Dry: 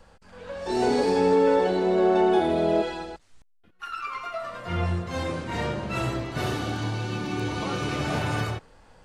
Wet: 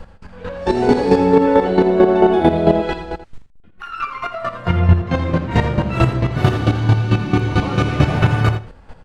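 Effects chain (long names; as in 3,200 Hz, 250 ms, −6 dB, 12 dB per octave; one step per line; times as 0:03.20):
bass and treble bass +7 dB, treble −9 dB
square-wave tremolo 4.5 Hz, depth 65%, duty 20%
0:04.79–0:05.51: high-frequency loss of the air 76 metres
on a send: single-tap delay 83 ms −12.5 dB
on the sum: boost into a limiter +14.5 dB
level −1 dB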